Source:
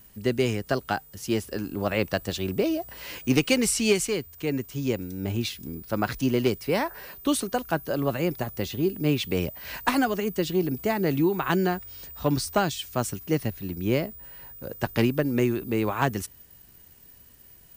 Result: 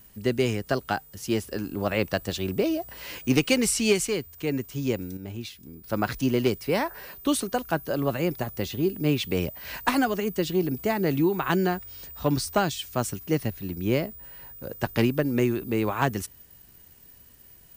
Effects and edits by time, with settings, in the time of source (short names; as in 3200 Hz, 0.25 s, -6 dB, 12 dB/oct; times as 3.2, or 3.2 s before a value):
5.17–5.84 gain -8 dB